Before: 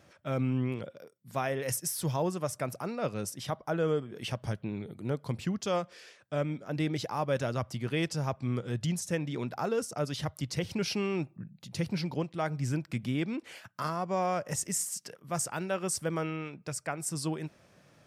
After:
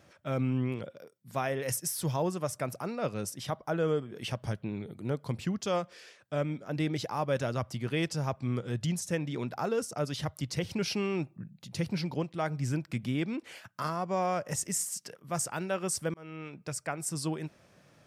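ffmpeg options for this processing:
-filter_complex "[0:a]asplit=2[a][b];[a]atrim=end=16.14,asetpts=PTS-STARTPTS,afade=t=out:st=16.136:d=0.004:c=hsin[c];[b]atrim=start=16.14,asetpts=PTS-STARTPTS,afade=t=in:d=0.44[d];[c][d]concat=n=2:v=0:a=1"

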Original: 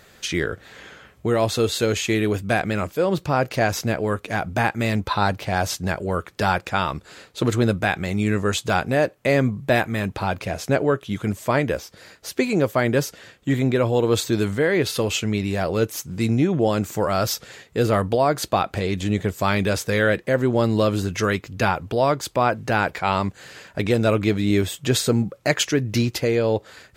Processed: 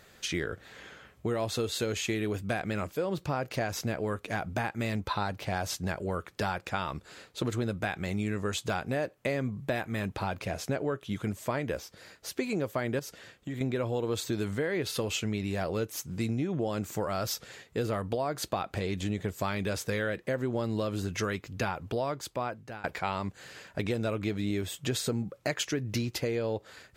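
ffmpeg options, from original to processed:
-filter_complex "[0:a]asettb=1/sr,asplit=3[a][b][c];[a]atrim=end=12.994[d];[b]atrim=start=12.99:end=13.61,asetpts=PTS-STARTPTS,afade=t=in:d=0.004:c=qsin,afade=t=out:st=0.616:d=0.004:c=qsin,acompressor=threshold=-27dB:ratio=6:attack=3.2:release=140:knee=1:detection=peak[e];[c]atrim=start=13.606[f];[d][e]acrossfade=d=0.004:c1=hsin:c2=qsin[g];[g][f]acrossfade=d=0.004:c1=qsin:c2=hsin,asplit=2[h][i];[h]atrim=end=22.84,asetpts=PTS-STARTPTS,afade=t=out:st=21.95:d=0.89:silence=0.0668344[j];[i]atrim=start=22.84,asetpts=PTS-STARTPTS,afade=t=in:d=0.004:c=hsin:silence=0.0668344[k];[j][k]concat=n=2:v=0:a=1,acompressor=threshold=-21dB:ratio=6,volume=-6dB"

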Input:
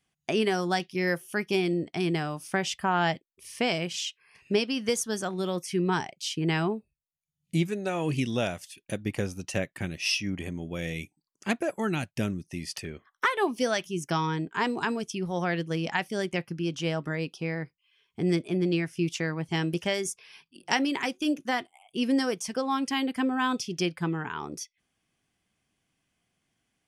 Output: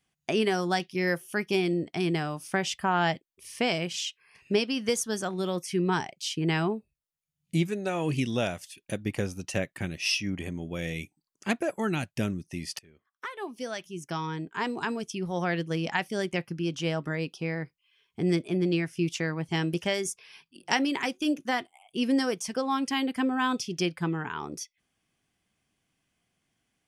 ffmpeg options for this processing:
-filter_complex "[0:a]asplit=2[a][b];[a]atrim=end=12.79,asetpts=PTS-STARTPTS,afade=t=out:st=12.786:d=0.004:c=hsin:silence=0.0749894[c];[b]atrim=start=12.79,asetpts=PTS-STARTPTS,afade=t=in:d=2.72:silence=0.0749894[d];[c][d]concat=n=2:v=0:a=1"

